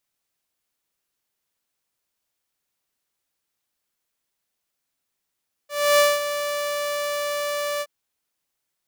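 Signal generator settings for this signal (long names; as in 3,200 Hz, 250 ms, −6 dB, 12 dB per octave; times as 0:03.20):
note with an ADSR envelope saw 583 Hz, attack 295 ms, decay 207 ms, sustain −11 dB, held 2.12 s, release 51 ms −10.5 dBFS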